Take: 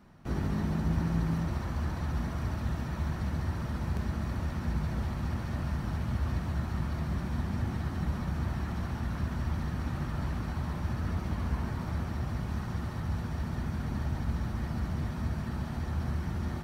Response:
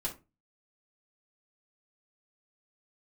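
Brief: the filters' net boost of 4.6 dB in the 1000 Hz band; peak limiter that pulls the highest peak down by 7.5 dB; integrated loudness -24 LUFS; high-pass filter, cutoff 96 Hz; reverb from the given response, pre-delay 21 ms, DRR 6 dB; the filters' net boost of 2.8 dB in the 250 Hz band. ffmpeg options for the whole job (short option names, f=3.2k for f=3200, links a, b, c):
-filter_complex "[0:a]highpass=96,equalizer=f=250:t=o:g=4,equalizer=f=1k:t=o:g=5.5,alimiter=level_in=0.5dB:limit=-24dB:level=0:latency=1,volume=-0.5dB,asplit=2[a][b];[1:a]atrim=start_sample=2205,adelay=21[c];[b][c]afir=irnorm=-1:irlink=0,volume=-8dB[d];[a][d]amix=inputs=2:normalize=0,volume=9.5dB"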